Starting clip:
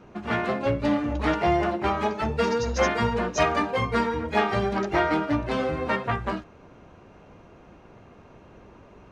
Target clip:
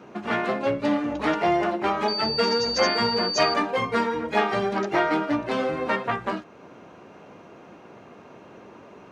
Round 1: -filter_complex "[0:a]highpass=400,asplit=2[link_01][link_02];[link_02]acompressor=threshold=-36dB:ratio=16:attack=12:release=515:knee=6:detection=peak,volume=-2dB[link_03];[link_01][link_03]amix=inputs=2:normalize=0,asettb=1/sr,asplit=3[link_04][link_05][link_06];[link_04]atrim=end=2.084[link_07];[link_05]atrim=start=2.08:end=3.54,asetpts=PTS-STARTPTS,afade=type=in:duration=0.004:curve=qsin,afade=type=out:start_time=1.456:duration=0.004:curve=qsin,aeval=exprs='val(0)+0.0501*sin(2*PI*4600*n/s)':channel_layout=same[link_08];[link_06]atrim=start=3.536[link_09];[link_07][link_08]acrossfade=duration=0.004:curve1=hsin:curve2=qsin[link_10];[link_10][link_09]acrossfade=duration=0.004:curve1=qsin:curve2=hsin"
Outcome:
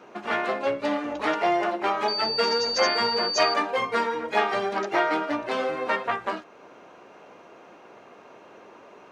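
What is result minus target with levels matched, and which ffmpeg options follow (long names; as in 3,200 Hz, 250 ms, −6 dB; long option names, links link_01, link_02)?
250 Hz band −5.0 dB
-filter_complex "[0:a]highpass=190,asplit=2[link_01][link_02];[link_02]acompressor=threshold=-36dB:ratio=16:attack=12:release=515:knee=6:detection=peak,volume=-2dB[link_03];[link_01][link_03]amix=inputs=2:normalize=0,asettb=1/sr,asplit=3[link_04][link_05][link_06];[link_04]atrim=end=2.084[link_07];[link_05]atrim=start=2.08:end=3.54,asetpts=PTS-STARTPTS,afade=type=in:duration=0.004:curve=qsin,afade=type=out:start_time=1.456:duration=0.004:curve=qsin,aeval=exprs='val(0)+0.0501*sin(2*PI*4600*n/s)':channel_layout=same[link_08];[link_06]atrim=start=3.536[link_09];[link_07][link_08]acrossfade=duration=0.004:curve1=hsin:curve2=qsin[link_10];[link_10][link_09]acrossfade=duration=0.004:curve1=qsin:curve2=hsin"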